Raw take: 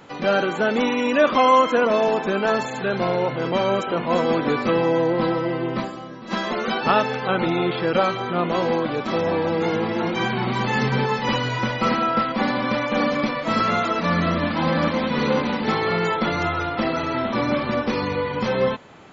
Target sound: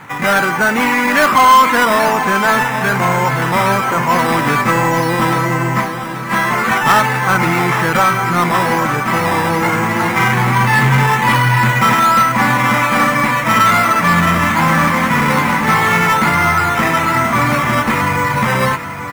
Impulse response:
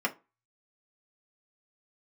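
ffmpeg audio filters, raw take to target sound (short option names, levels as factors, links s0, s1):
-filter_complex "[0:a]acrusher=samples=8:mix=1:aa=0.000001:lfo=1:lforange=4.8:lforate=1.2,equalizer=f=125:t=o:w=1:g=10,equalizer=f=500:t=o:w=1:g=-6,equalizer=f=1000:t=o:w=1:g=9,equalizer=f=2000:t=o:w=1:g=12,equalizer=f=4000:t=o:w=1:g=-5,acontrast=87,asplit=2[s0][s1];[s1]aecho=0:1:832|1664|2496|3328|4160|4992:0.266|0.141|0.0747|0.0396|0.021|0.0111[s2];[s0][s2]amix=inputs=2:normalize=0,volume=0.708"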